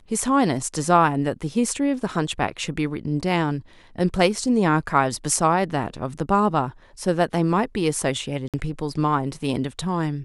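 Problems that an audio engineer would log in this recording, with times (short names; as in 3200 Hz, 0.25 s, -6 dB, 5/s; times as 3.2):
8.48–8.54 gap 57 ms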